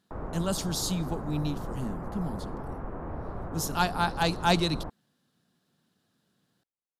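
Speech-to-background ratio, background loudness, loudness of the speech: 9.0 dB, −39.0 LKFS, −30.0 LKFS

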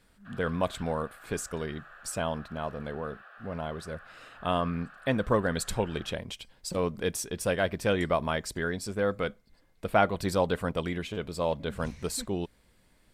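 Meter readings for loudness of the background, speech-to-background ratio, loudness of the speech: −51.0 LKFS, 19.5 dB, −31.5 LKFS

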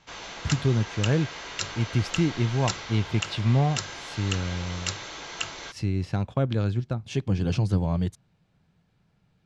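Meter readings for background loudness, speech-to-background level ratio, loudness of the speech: −34.0 LKFS, 7.0 dB, −27.0 LKFS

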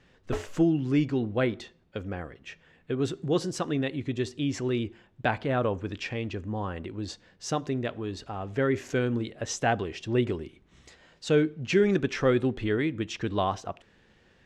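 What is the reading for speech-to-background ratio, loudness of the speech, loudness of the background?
9.5 dB, −29.0 LKFS, −38.5 LKFS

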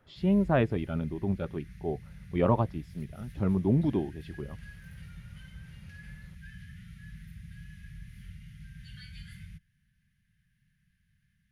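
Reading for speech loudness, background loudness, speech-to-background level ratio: −29.5 LKFS, −48.5 LKFS, 19.0 dB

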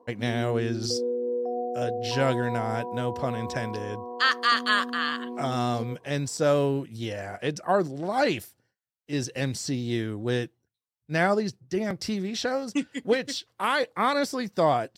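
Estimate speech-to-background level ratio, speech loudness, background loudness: 6.0 dB, −27.5 LKFS, −33.5 LKFS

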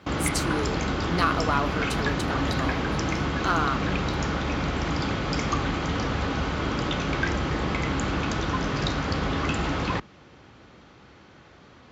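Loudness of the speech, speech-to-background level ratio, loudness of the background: −30.0 LKFS, −3.0 dB, −27.0 LKFS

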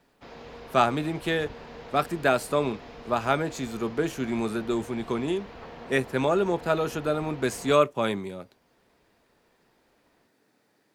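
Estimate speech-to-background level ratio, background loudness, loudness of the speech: 17.5 dB, −44.5 LKFS, −27.0 LKFS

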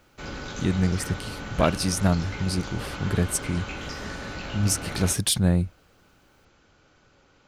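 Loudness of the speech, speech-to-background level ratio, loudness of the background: −26.0 LKFS, 9.5 dB, −35.5 LKFS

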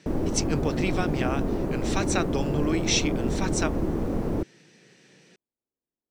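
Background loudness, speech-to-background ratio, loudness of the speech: −28.5 LKFS, −1.5 dB, −30.0 LKFS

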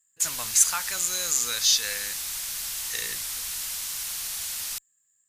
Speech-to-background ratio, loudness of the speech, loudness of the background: 5.5 dB, −24.0 LKFS, −29.5 LKFS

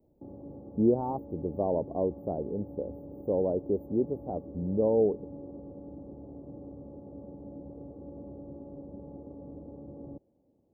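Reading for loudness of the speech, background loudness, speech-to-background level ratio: −30.5 LKFS, −45.5 LKFS, 15.0 dB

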